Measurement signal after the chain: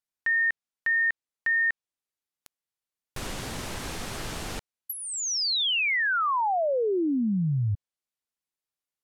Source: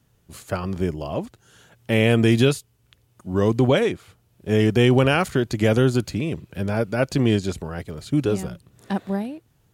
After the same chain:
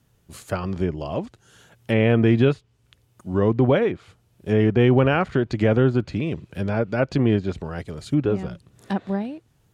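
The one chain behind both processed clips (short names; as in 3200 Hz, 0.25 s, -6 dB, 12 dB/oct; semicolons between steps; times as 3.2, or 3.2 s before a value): treble ducked by the level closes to 2100 Hz, closed at -17 dBFS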